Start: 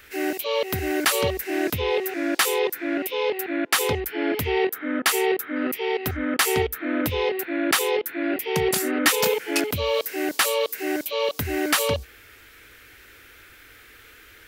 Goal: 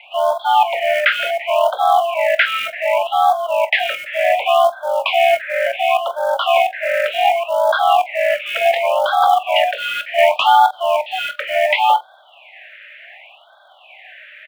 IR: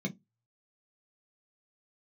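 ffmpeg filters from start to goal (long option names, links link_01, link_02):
-filter_complex "[0:a]highpass=frequency=310:width_type=q:width=0.5412,highpass=frequency=310:width_type=q:width=1.307,lowpass=frequency=2700:width_type=q:width=0.5176,lowpass=frequency=2700:width_type=q:width=0.7071,lowpass=frequency=2700:width_type=q:width=1.932,afreqshift=300,acrossover=split=800[link_01][link_02];[link_01]acrusher=bits=5:mode=log:mix=0:aa=0.000001[link_03];[link_03][link_02]amix=inputs=2:normalize=0,asettb=1/sr,asplit=3[link_04][link_05][link_06];[link_04]atrim=end=10.184[link_07];[link_05]atrim=start=10.18:end=10.71,asetpts=PTS-STARTPTS,afade=type=in:duration=0.004:curve=qsin,afade=type=out:start_time=0.526:duration=0.004:curve=qsin,acontrast=58[link_08];[link_06]atrim=start=10.706[link_09];[link_07][link_08]acrossfade=duration=0.004:curve1=hsin:curve2=qsin[link_10];[link_10][link_09]acrossfade=duration=0.004:curve1=qsin:curve2=hsin,asplit=2[link_11][link_12];[link_12]aecho=0:1:22|45:0.237|0.168[link_13];[link_11][link_13]amix=inputs=2:normalize=0,alimiter=level_in=12.5dB:limit=-1dB:release=50:level=0:latency=1,afftfilt=real='re*(1-between(b*sr/1024,870*pow(2300/870,0.5+0.5*sin(2*PI*0.68*pts/sr))/1.41,870*pow(2300/870,0.5+0.5*sin(2*PI*0.68*pts/sr))*1.41))':imag='im*(1-between(b*sr/1024,870*pow(2300/870,0.5+0.5*sin(2*PI*0.68*pts/sr))/1.41,870*pow(2300/870,0.5+0.5*sin(2*PI*0.68*pts/sr))*1.41))':win_size=1024:overlap=0.75,volume=-1.5dB"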